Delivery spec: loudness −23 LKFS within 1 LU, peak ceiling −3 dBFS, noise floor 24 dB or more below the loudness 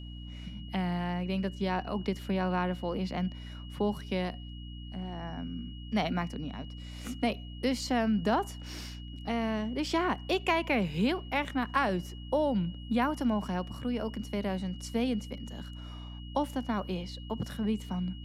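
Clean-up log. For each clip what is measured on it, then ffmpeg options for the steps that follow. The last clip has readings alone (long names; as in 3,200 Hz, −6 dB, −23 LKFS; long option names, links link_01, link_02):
mains hum 60 Hz; hum harmonics up to 300 Hz; level of the hum −40 dBFS; interfering tone 2,900 Hz; level of the tone −51 dBFS; integrated loudness −32.5 LKFS; sample peak −14.0 dBFS; target loudness −23.0 LKFS
→ -af "bandreject=frequency=60:width_type=h:width=6,bandreject=frequency=120:width_type=h:width=6,bandreject=frequency=180:width_type=h:width=6,bandreject=frequency=240:width_type=h:width=6,bandreject=frequency=300:width_type=h:width=6"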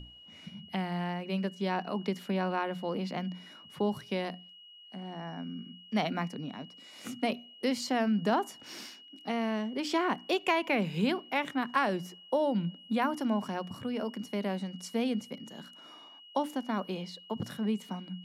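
mains hum none found; interfering tone 2,900 Hz; level of the tone −51 dBFS
→ -af "bandreject=frequency=2900:width=30"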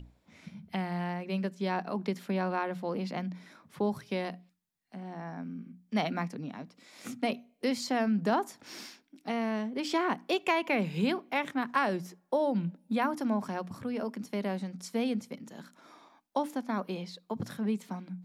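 interfering tone none found; integrated loudness −33.0 LKFS; sample peak −14.0 dBFS; target loudness −23.0 LKFS
→ -af "volume=10dB"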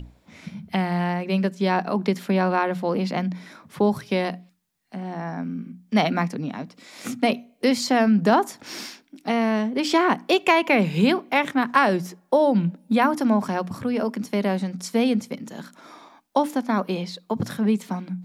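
integrated loudness −23.0 LKFS; sample peak −4.0 dBFS; background noise floor −61 dBFS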